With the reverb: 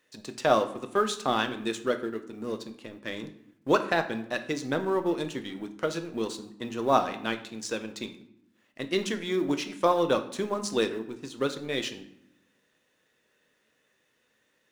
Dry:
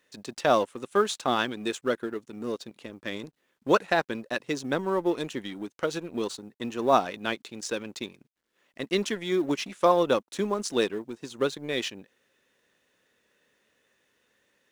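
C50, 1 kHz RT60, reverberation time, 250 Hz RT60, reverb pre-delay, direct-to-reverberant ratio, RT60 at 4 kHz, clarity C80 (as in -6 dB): 12.5 dB, 0.80 s, 0.80 s, 1.2 s, 6 ms, 7.5 dB, 0.55 s, 16.0 dB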